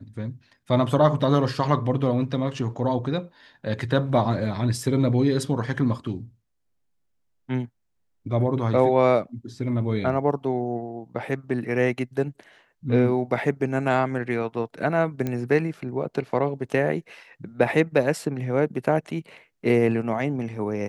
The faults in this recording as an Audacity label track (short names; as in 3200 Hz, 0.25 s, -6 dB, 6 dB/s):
15.270000	15.270000	pop -15 dBFS